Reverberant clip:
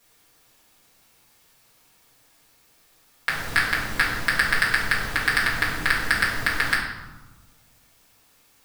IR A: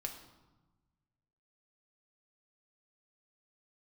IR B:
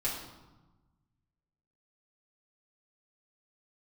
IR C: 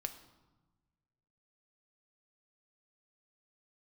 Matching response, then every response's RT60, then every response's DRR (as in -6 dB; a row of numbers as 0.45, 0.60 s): B; 1.2, 1.1, 1.2 s; 2.0, -7.5, 6.5 dB